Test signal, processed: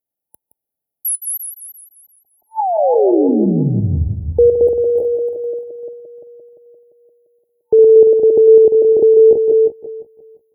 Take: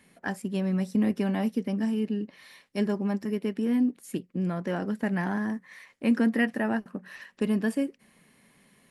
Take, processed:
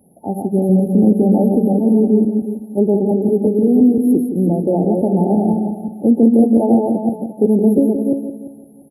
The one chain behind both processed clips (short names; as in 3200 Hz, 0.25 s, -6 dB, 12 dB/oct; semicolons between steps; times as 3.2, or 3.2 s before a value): regenerating reverse delay 0.173 s, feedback 49%, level -3.5 dB; dynamic EQ 400 Hz, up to +7 dB, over -38 dBFS, Q 1.4; HPF 51 Hz; on a send: echo 0.169 s -10 dB; on the sum: FFT band-reject 890–10000 Hz; in parallel at +1 dB: limiter -16.5 dBFS; on the sum: gain +3.5 dB